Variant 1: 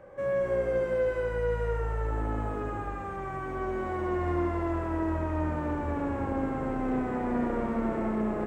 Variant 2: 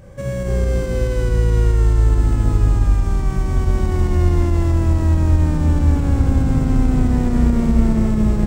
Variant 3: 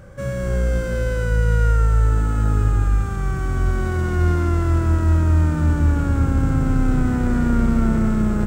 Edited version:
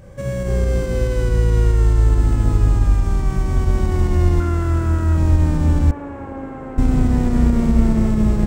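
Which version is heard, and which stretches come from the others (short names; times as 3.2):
2
4.4–5.17 from 3
5.91–6.78 from 1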